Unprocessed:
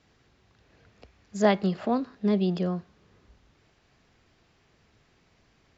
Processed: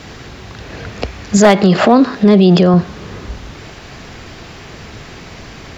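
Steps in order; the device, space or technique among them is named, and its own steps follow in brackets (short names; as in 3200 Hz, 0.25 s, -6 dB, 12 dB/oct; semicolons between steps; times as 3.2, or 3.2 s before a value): 1.37–2.74 low shelf 120 Hz -10 dB; loud club master (compressor 1.5:1, threshold -36 dBFS, peak gain reduction 7 dB; hard clip -24 dBFS, distortion -17 dB; maximiser +32 dB); gain -1 dB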